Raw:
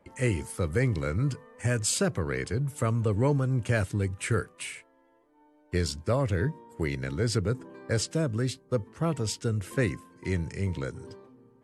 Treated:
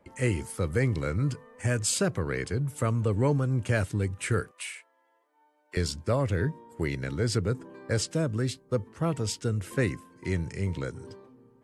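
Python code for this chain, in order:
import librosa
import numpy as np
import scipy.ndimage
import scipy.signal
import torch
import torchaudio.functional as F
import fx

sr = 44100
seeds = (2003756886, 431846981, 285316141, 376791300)

y = fx.highpass(x, sr, hz=720.0, slope=12, at=(4.51, 5.77))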